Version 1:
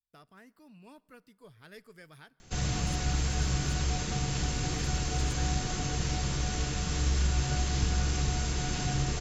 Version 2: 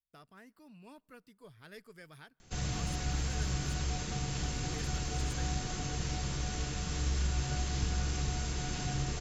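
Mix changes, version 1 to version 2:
speech: send -9.0 dB; background -4.5 dB

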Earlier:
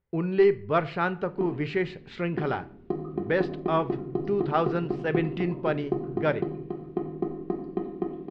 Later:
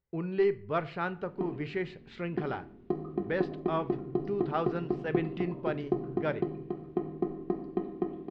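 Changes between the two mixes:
speech -6.5 dB; background: send -7.0 dB

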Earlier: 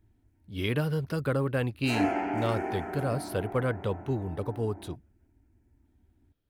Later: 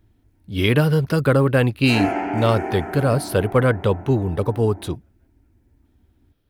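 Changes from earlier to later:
speech +11.5 dB; background +6.0 dB

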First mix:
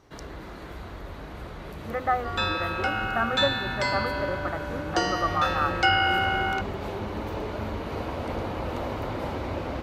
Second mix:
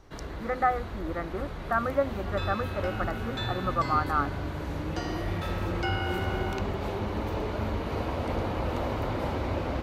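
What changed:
speech: entry -1.45 s; second sound -12.0 dB; master: add bass shelf 120 Hz +4 dB

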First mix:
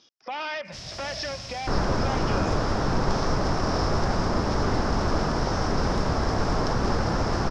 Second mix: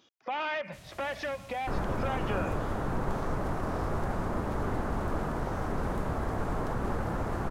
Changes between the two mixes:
first sound -9.0 dB; second sound -7.0 dB; master: remove resonant low-pass 5.3 kHz, resonance Q 8.1

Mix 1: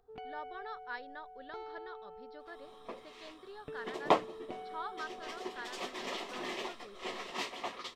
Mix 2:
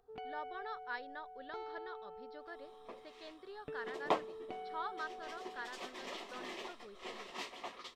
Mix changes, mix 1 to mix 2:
second sound -6.0 dB; master: add bass shelf 130 Hz -4.5 dB

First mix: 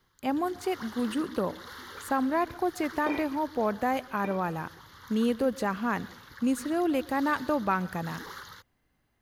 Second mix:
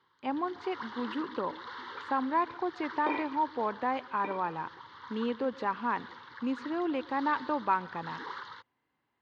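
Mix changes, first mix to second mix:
speech -4.0 dB; master: add cabinet simulation 170–4100 Hz, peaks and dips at 190 Hz -7 dB, 660 Hz -5 dB, 960 Hz +9 dB

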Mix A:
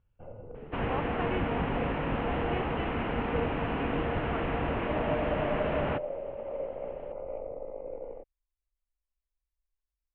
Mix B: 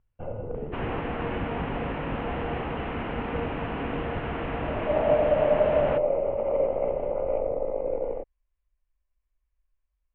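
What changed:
speech -6.0 dB; first sound +11.0 dB

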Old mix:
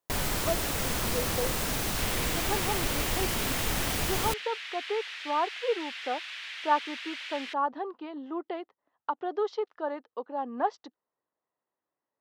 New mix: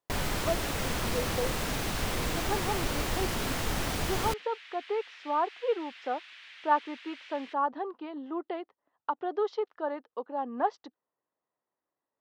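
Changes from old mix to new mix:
second sound -9.0 dB; master: add treble shelf 6.8 kHz -8.5 dB

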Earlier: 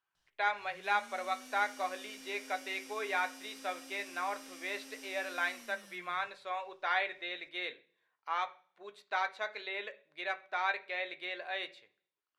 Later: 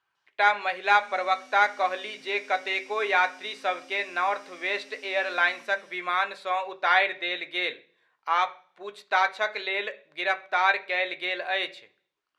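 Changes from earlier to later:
speech +10.5 dB; background: add band-pass 230–6300 Hz

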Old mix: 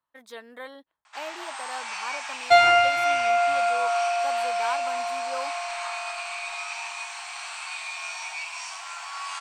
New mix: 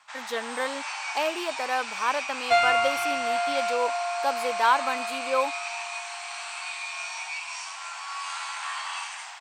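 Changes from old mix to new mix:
speech +10.0 dB; first sound: entry -1.05 s; second sound -5.0 dB

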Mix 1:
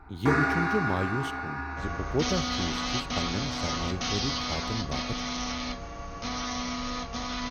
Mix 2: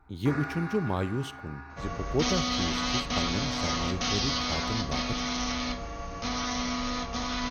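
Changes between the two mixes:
first sound -10.5 dB; second sound: send on

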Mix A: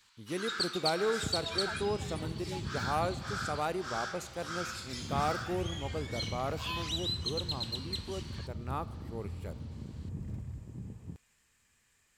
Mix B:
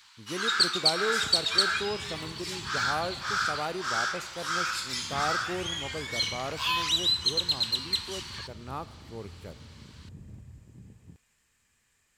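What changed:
first sound +10.0 dB; second sound -6.5 dB

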